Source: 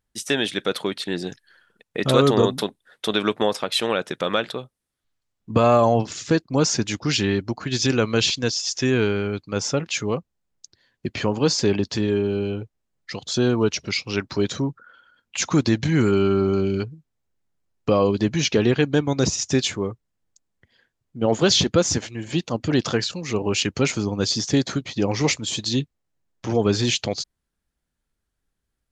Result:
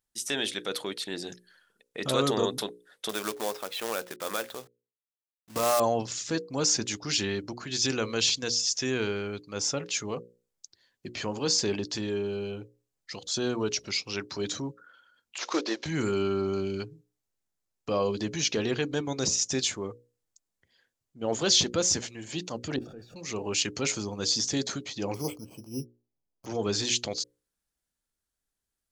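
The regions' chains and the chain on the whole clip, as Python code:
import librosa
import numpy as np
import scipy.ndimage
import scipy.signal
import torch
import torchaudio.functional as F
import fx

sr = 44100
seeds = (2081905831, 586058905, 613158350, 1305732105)

y = fx.chain(x, sr, fx.lowpass(hz=2300.0, slope=12),
    fx.low_shelf(hz=300.0, db=-7.0),
    fx.quant_companded(bits=4), at=(3.09, 5.8))
y = fx.chain(y, sr, fx.cvsd(bps=32000),
    fx.highpass(hz=350.0, slope=24),
    fx.transient(attack_db=11, sustain_db=0), at=(15.38, 15.86))
y = fx.chain(y, sr, fx.zero_step(step_db=-25.0),
    fx.level_steps(step_db=16),
    fx.moving_average(points=43), at=(22.76, 23.16))
y = fx.chain(y, sr, fx.moving_average(points=24),
    fx.resample_bad(factor=8, down='filtered', up='hold'), at=(25.14, 26.46))
y = fx.bass_treble(y, sr, bass_db=-5, treble_db=8)
y = fx.hum_notches(y, sr, base_hz=60, count=9)
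y = fx.transient(y, sr, attack_db=-3, sustain_db=1)
y = F.gain(torch.from_numpy(y), -7.0).numpy()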